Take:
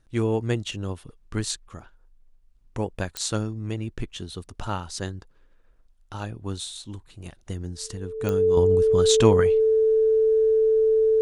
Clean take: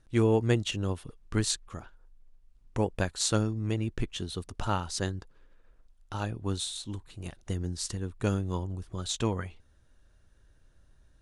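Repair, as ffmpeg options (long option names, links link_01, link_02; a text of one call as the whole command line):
ffmpeg -i in.wav -af "adeclick=threshold=4,bandreject=frequency=440:width=30,asetnsamples=nb_out_samples=441:pad=0,asendcmd='8.57 volume volume -10dB',volume=0dB" out.wav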